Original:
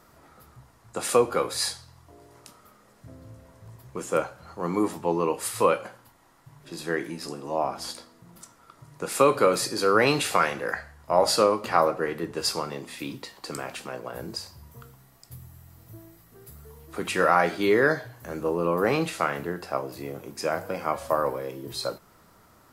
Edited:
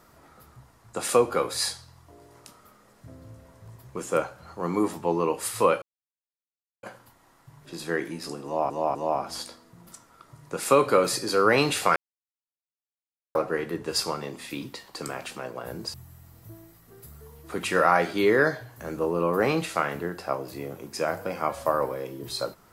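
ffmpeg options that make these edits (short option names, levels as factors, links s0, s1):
-filter_complex "[0:a]asplit=7[s0][s1][s2][s3][s4][s5][s6];[s0]atrim=end=5.82,asetpts=PTS-STARTPTS,afade=t=out:st=5.816:d=0.004:c=hsin,apad=pad_dur=1.01[s7];[s1]atrim=start=5.82:end=7.692,asetpts=PTS-STARTPTS,afade=t=in:d=0.004:c=hsin[s8];[s2]atrim=start=7.438:end=7.692[s9];[s3]atrim=start=7.438:end=10.45,asetpts=PTS-STARTPTS,afade=t=out:st=3.008:d=0.004:c=hsin[s10];[s4]atrim=start=10.45:end=11.84,asetpts=PTS-STARTPTS,volume=0[s11];[s5]atrim=start=11.84:end=14.432,asetpts=PTS-STARTPTS,afade=t=in:d=0.004:c=hsin[s12];[s6]atrim=start=15.378[s13];[s7][s8]concat=n=2:v=0:a=1[s14];[s14][s9]acrossfade=d=0.004:c1=hsin:c2=hsin[s15];[s10][s11][s12]concat=n=3:v=0:a=1[s16];[s15][s16]acrossfade=d=0.004:c1=hsin:c2=hsin[s17];[s17][s13]acrossfade=d=0.004:c1=hsin:c2=hsin"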